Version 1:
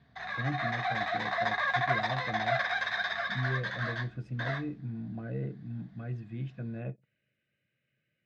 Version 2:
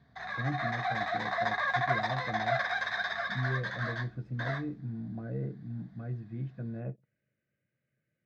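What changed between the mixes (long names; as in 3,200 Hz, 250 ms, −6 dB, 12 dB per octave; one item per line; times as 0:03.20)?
speech: add low-pass filter 1,600 Hz 6 dB per octave
master: add parametric band 2,800 Hz −7.5 dB 0.54 octaves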